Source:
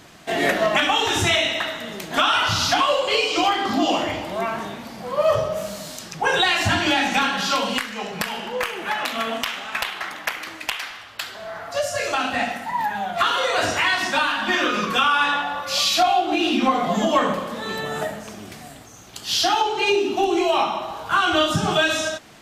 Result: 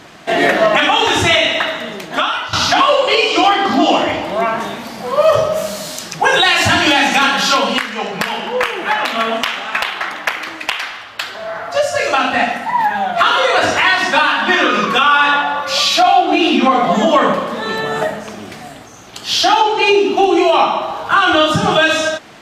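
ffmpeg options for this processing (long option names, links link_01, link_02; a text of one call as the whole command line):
ffmpeg -i in.wav -filter_complex "[0:a]asettb=1/sr,asplit=3[link_01][link_02][link_03];[link_01]atrim=end=4.604[link_04];[link_02]atrim=start=4.6:end=7.55,asetpts=PTS-STARTPTS,afade=type=in:duration=0.004:curve=qsin,afade=type=out:start_time=2.946:duration=0.004:curve=qsin,aemphasis=mode=production:type=cd[link_05];[link_03]atrim=start=7.546[link_06];[link_04][link_05]acrossfade=duration=0.004:curve1=hsin:curve2=qsin[link_07];[link_07][link_06]acrossfade=duration=0.004:curve1=qsin:curve2=hsin,asplit=2[link_08][link_09];[link_08]atrim=end=2.53,asetpts=PTS-STARTPTS,afade=type=out:start_time=1.78:duration=0.75:silence=0.16788[link_10];[link_09]atrim=start=2.53,asetpts=PTS-STARTPTS,afade=type=in:duration=0.004:curve=hsin:silence=0.16788[link_11];[link_10][link_11]concat=n=2:v=0:a=1,lowpass=frequency=3600:poles=1,lowshelf=frequency=160:gain=-8,alimiter=level_in=10.5dB:limit=-1dB:release=50:level=0:latency=1,volume=-1dB" out.wav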